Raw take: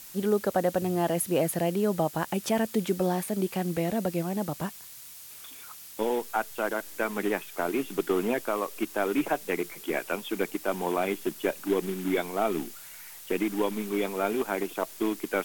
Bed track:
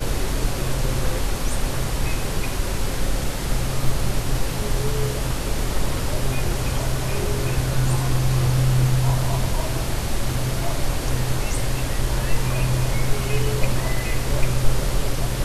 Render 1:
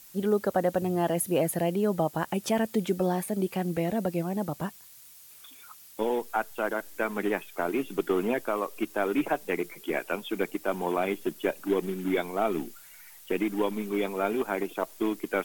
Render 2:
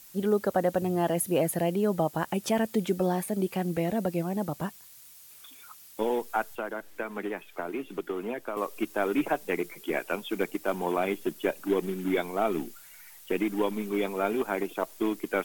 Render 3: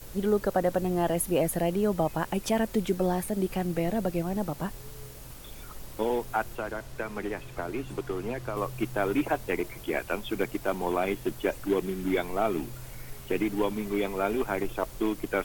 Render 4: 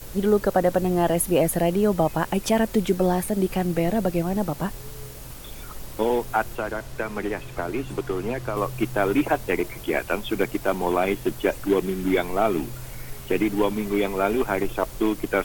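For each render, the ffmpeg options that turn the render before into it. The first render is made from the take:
-af "afftdn=nr=7:nf=-46"
-filter_complex "[0:a]asettb=1/sr,asplit=3[a][b][c];[a]atrim=end=6.554[d];[b]atrim=start=6.55:end=8.57,asetpts=PTS-STARTPTS,afade=t=in:d=0.004:c=qsin,afade=t=out:st=2.016:d=0.004:c=qsin,acrossover=split=220|3800[e][f][g];[e]acompressor=threshold=-48dB:ratio=4[h];[f]acompressor=threshold=-31dB:ratio=4[i];[g]acompressor=threshold=-59dB:ratio=4[j];[h][i][j]amix=inputs=3:normalize=0[k];[c]atrim=start=8.566[l];[d][k]acrossfade=d=0.004:c1=hsin:c2=qsin[m];[m][l]acrossfade=d=0.004:c1=qsin:c2=hsin,asettb=1/sr,asplit=3[n][o][p];[n]atrim=end=10.104[q];[o]atrim=start=10.1:end=10.72,asetpts=PTS-STARTPTS,afade=t=in:d=0.004:c=qsin,afade=t=out:st=0.616:d=0.004:c=qsin,acrusher=bits=7:mode=log:mix=0:aa=0.000001[r];[p]atrim=start=10.716[s];[q][r]acrossfade=d=0.004:c1=hsin:c2=qsin[t];[t][s]acrossfade=d=0.004:c1=qsin:c2=hsin"
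-filter_complex "[1:a]volume=-22dB[a];[0:a][a]amix=inputs=2:normalize=0"
-af "volume=5.5dB"

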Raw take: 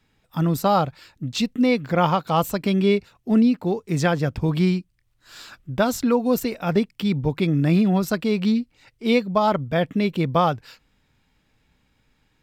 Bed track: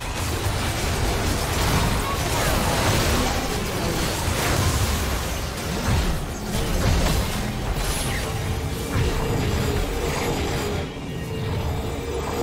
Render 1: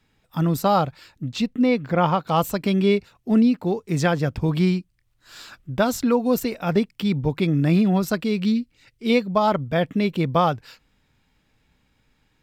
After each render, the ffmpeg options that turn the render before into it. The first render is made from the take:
-filter_complex "[0:a]asettb=1/sr,asplit=3[a][b][c];[a]atrim=end=1.314[d];[b]atrim=start=1.31:end=2.29,asetpts=PTS-STARTPTS,afade=t=in:d=0.004:c=qsin,afade=t=out:st=0.976:d=0.004:c=qsin,highshelf=f=3.8k:g=-8[e];[c]atrim=start=2.286[f];[d][e]acrossfade=d=0.004:c1=hsin:c2=qsin[g];[g][f]acrossfade=d=0.004:c1=qsin:c2=hsin,asettb=1/sr,asplit=3[h][i][j];[h]atrim=end=8.244[k];[i]atrim=start=8.24:end=9.1,asetpts=PTS-STARTPTS,afade=t=in:d=0.004:c=qsin,afade=t=out:st=0.856:d=0.004:c=qsin,equalizer=f=810:w=1.1:g=-8.5[l];[j]atrim=start=9.096[m];[k][l]acrossfade=d=0.004:c1=hsin:c2=qsin[n];[n][m]acrossfade=d=0.004:c1=qsin:c2=hsin"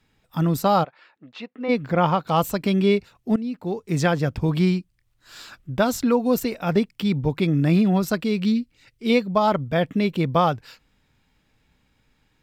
-filter_complex "[0:a]asplit=3[a][b][c];[a]afade=t=out:st=0.83:d=0.02[d];[b]highpass=560,lowpass=2.1k,afade=t=in:st=0.83:d=0.02,afade=t=out:st=1.68:d=0.02[e];[c]afade=t=in:st=1.68:d=0.02[f];[d][e][f]amix=inputs=3:normalize=0,asplit=2[g][h];[g]atrim=end=3.36,asetpts=PTS-STARTPTS,afade=t=out:st=3.356:d=0.004:c=hsin:silence=0.11885[i];[h]atrim=start=3.36,asetpts=PTS-STARTPTS,afade=t=in:d=0.57:silence=0.11885[j];[i][j]concat=n=2:v=0:a=1"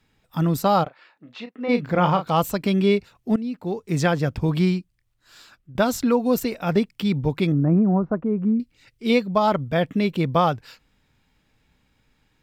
-filter_complex "[0:a]asettb=1/sr,asplit=3[a][b][c];[a]atrim=end=0.834[d];[b]atrim=start=0.83:end=2.27,asetpts=PTS-STARTPTS,afade=t=in:d=0.004:c=qsin,afade=t=out:st=1.436:d=0.004:c=qsin,asplit=2[e][f];[f]adelay=33,volume=-8dB[g];[e][g]amix=inputs=2:normalize=0,atrim=end_sample=63504[h];[c]atrim=start=2.266[i];[d][h]acrossfade=d=0.004:c1=hsin:c2=qsin[j];[j][i]acrossfade=d=0.004:c1=qsin:c2=hsin,asettb=1/sr,asplit=3[k][l][m];[k]atrim=end=7.524[n];[l]atrim=start=7.52:end=8.6,asetpts=PTS-STARTPTS,afade=t=in:d=0.004:c=qsin,afade=t=out:st=1.076:d=0.004:c=qsin,lowpass=f=1.2k:w=0.5412,lowpass=f=1.2k:w=1.3066[o];[m]atrim=start=8.596[p];[n][o]acrossfade=d=0.004:c1=hsin:c2=qsin[q];[q][p]acrossfade=d=0.004:c1=qsin:c2=hsin,asplit=2[r][s];[r]atrim=end=5.75,asetpts=PTS-STARTPTS,afade=t=out:st=4.59:d=1.16:silence=0.237137[t];[s]atrim=start=5.75,asetpts=PTS-STARTPTS,afade=t=in:d=0.004:c=hsin:silence=0.237137[u];[t][u]concat=n=2:v=0:a=1"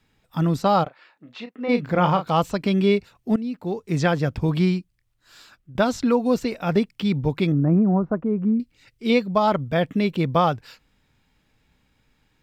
-filter_complex "[0:a]acrossover=split=6800[a][b];[b]acompressor=threshold=-54dB:ratio=4:attack=1:release=60[c];[a][c]amix=inputs=2:normalize=0"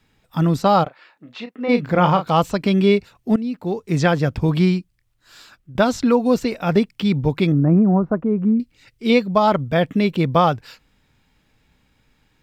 -af "volume=3.5dB"

